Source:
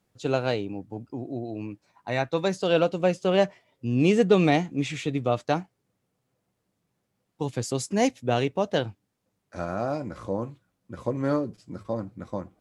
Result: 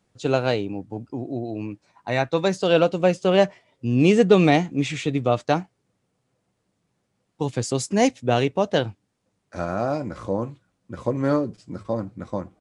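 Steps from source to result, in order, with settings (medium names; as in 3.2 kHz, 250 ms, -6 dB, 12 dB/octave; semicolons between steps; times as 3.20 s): resampled via 22.05 kHz; trim +4 dB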